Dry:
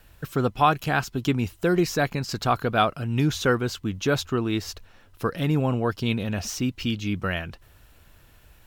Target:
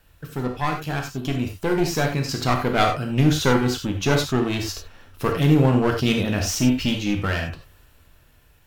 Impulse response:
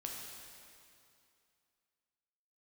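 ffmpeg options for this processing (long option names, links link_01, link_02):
-filter_complex "[0:a]aeval=exprs='clip(val(0),-1,0.0501)':channel_layout=same,dynaudnorm=framelen=280:gausssize=11:maxgain=11.5dB[link_01];[1:a]atrim=start_sample=2205,afade=type=out:start_time=0.15:duration=0.01,atrim=end_sample=7056[link_02];[link_01][link_02]afir=irnorm=-1:irlink=0"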